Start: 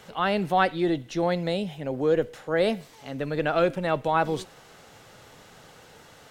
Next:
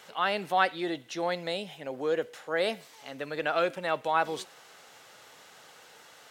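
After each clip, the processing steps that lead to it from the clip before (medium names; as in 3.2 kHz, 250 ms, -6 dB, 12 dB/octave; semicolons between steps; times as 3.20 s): high-pass 820 Hz 6 dB/octave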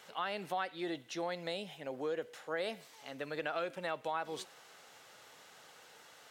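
compression 4:1, threshold -29 dBFS, peak gain reduction 9.5 dB; trim -4.5 dB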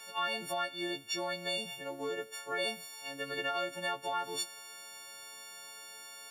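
partials quantised in pitch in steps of 4 st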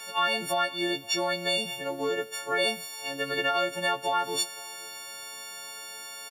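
delay 518 ms -23.5 dB; trim +8 dB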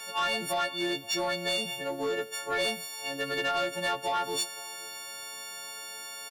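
saturation -23 dBFS, distortion -15 dB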